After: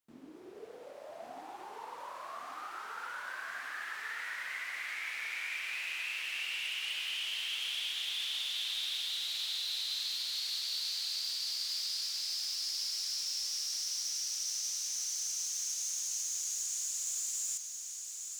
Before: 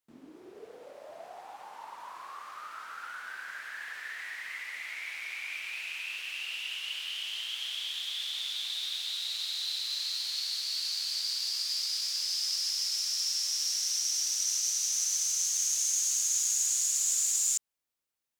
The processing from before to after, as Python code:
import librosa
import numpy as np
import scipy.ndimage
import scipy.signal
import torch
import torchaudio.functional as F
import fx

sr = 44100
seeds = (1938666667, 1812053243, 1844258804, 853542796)

y = fx.rider(x, sr, range_db=4, speed_s=0.5)
y = np.clip(y, -10.0 ** (-27.5 / 20.0), 10.0 ** (-27.5 / 20.0))
y = fx.echo_feedback(y, sr, ms=1136, feedback_pct=40, wet_db=-6)
y = y * librosa.db_to_amplitude(-4.5)